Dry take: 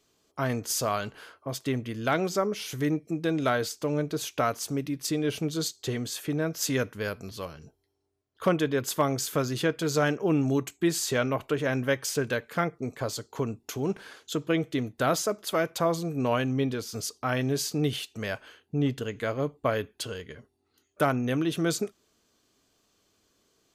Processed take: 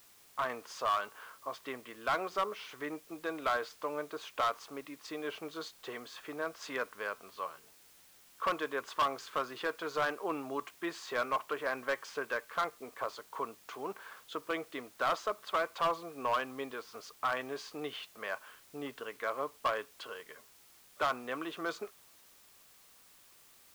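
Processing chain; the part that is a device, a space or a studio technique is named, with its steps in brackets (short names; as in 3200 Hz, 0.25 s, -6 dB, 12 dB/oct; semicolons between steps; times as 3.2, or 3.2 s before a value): drive-through speaker (BPF 550–2800 Hz; bell 1100 Hz +10 dB 0.53 oct; hard clip -20.5 dBFS, distortion -10 dB; white noise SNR 23 dB); gain -4.5 dB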